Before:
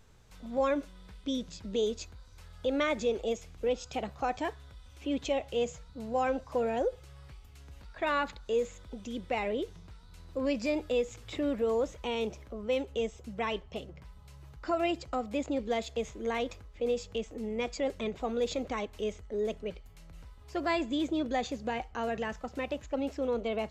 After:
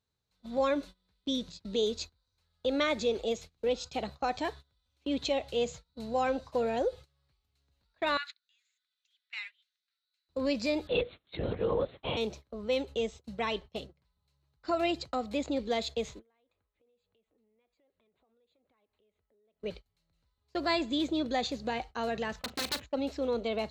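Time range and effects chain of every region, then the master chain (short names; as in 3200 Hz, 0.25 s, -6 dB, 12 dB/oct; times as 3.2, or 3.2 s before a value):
8.17–10.29 steep high-pass 1500 Hz + high shelf 4400 Hz -8 dB
10.87–12.17 HPF 180 Hz 6 dB/oct + LPC vocoder at 8 kHz whisper
16.19–19.61 low shelf 240 Hz -8.5 dB + compressor 8:1, threshold -46 dBFS + running mean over 8 samples
22.39–22.86 resonant high shelf 3600 Hz -6 dB, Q 3 + wrapped overs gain 29 dB + doubler 39 ms -14 dB
whole clip: gate -43 dBFS, range -24 dB; HPF 58 Hz; bell 4100 Hz +13 dB 0.34 oct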